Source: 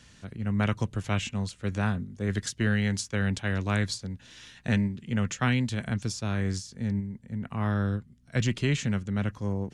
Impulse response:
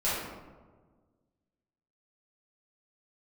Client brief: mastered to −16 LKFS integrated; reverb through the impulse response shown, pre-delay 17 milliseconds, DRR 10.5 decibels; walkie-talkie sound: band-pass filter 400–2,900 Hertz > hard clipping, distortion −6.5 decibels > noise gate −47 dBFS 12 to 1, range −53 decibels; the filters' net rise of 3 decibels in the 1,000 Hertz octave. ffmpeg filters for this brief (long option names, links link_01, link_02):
-filter_complex "[0:a]equalizer=frequency=1000:width_type=o:gain=4.5,asplit=2[link_01][link_02];[1:a]atrim=start_sample=2205,adelay=17[link_03];[link_02][link_03]afir=irnorm=-1:irlink=0,volume=-21dB[link_04];[link_01][link_04]amix=inputs=2:normalize=0,highpass=400,lowpass=2900,asoftclip=type=hard:threshold=-30.5dB,agate=range=-53dB:threshold=-47dB:ratio=12,volume=22dB"